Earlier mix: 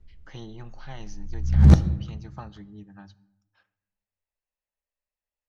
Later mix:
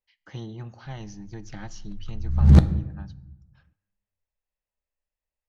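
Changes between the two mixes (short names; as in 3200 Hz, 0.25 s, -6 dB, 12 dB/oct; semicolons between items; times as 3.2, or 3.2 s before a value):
speech: add low shelf 260 Hz +7 dB; background: entry +0.85 s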